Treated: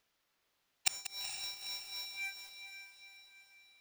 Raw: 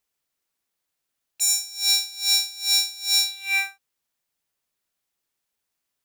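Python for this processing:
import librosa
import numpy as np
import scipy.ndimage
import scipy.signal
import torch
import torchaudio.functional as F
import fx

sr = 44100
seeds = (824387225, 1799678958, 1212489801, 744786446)

p1 = scipy.ndimage.median_filter(x, 5, mode='constant')
p2 = fx.leveller(p1, sr, passes=3)
p3 = fx.low_shelf(p2, sr, hz=370.0, db=-4.0)
p4 = fx.stretch_vocoder_free(p3, sr, factor=0.63)
p5 = fx.gate_flip(p4, sr, shuts_db=-28.0, range_db=-38)
p6 = p5 + fx.echo_diffused(p5, sr, ms=456, feedback_pct=47, wet_db=-8.0, dry=0)
p7 = fx.echo_crushed(p6, sr, ms=188, feedback_pct=55, bits=10, wet_db=-11.5)
y = F.gain(torch.from_numpy(p7), 15.5).numpy()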